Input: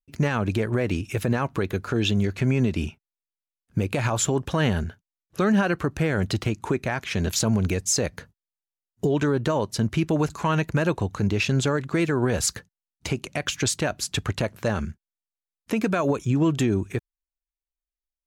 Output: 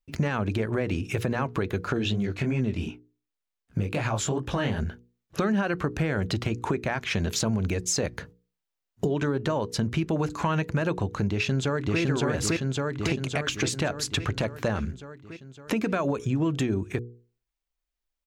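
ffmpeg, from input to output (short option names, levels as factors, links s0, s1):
-filter_complex "[0:a]asplit=3[s0][s1][s2];[s0]afade=t=out:st=1.97:d=0.02[s3];[s1]flanger=delay=15.5:depth=7.1:speed=2.7,afade=t=in:st=1.97:d=0.02,afade=t=out:st=4.78:d=0.02[s4];[s2]afade=t=in:st=4.78:d=0.02[s5];[s3][s4][s5]amix=inputs=3:normalize=0,asplit=2[s6][s7];[s7]afade=t=in:st=11.3:d=0.01,afade=t=out:st=12:d=0.01,aecho=0:1:560|1120|1680|2240|2800|3360|3920|4480:1|0.55|0.3025|0.166375|0.0915063|0.0503284|0.0276806|0.0152244[s8];[s6][s8]amix=inputs=2:normalize=0,equalizer=f=12000:w=0.51:g=-7.5,bandreject=f=60:t=h:w=6,bandreject=f=120:t=h:w=6,bandreject=f=180:t=h:w=6,bandreject=f=240:t=h:w=6,bandreject=f=300:t=h:w=6,bandreject=f=360:t=h:w=6,bandreject=f=420:t=h:w=6,bandreject=f=480:t=h:w=6,acompressor=threshold=0.02:ratio=3,volume=2.37"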